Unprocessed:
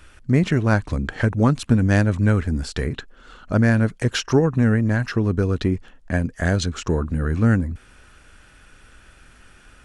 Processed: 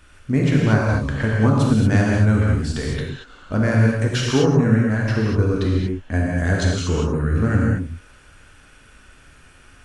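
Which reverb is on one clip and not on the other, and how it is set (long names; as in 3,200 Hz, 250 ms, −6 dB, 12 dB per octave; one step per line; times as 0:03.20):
reverb whose tail is shaped and stops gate 260 ms flat, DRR −3.5 dB
level −3.5 dB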